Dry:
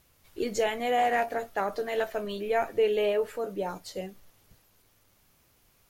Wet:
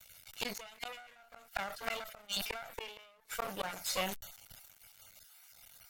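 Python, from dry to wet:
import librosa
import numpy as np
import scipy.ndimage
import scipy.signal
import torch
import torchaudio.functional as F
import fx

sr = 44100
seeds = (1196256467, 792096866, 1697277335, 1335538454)

y = fx.spec_dropout(x, sr, seeds[0], share_pct=26)
y = y + 0.87 * np.pad(y, (int(1.4 * sr / 1000.0), 0))[:len(y)]
y = np.maximum(y, 0.0)
y = fx.cheby_harmonics(y, sr, harmonics=(2, 4, 5, 7), levels_db=(-26, -30, -36, -31), full_scale_db=-11.5)
y = fx.gate_flip(y, sr, shuts_db=-25.0, range_db=-39)
y = fx.tilt_shelf(y, sr, db=-8.0, hz=920.0)
y = fx.sustainer(y, sr, db_per_s=67.0)
y = y * librosa.db_to_amplitude(5.0)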